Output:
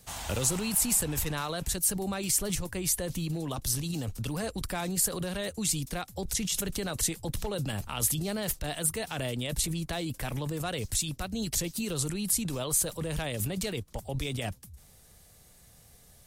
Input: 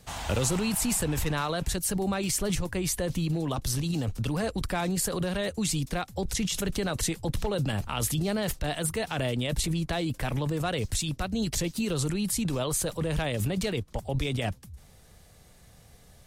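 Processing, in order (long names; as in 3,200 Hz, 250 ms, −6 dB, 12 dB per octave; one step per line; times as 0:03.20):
high-shelf EQ 6,400 Hz +11.5 dB
level −4.5 dB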